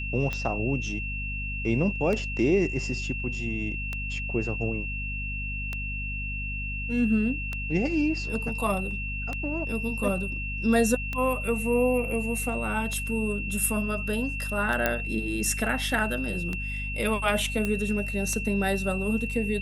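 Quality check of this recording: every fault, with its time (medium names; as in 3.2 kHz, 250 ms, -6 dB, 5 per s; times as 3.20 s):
hum 50 Hz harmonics 5 -34 dBFS
tick 33 1/3 rpm -17 dBFS
whine 2.7 kHz -33 dBFS
14.86 s: pop -9 dBFS
17.65 s: pop -15 dBFS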